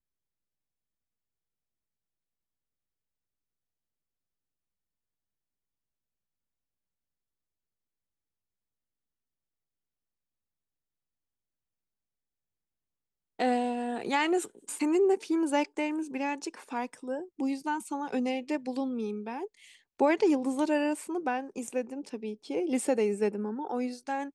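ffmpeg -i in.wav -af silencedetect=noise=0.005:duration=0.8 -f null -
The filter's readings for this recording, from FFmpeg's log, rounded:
silence_start: 0.00
silence_end: 13.39 | silence_duration: 13.39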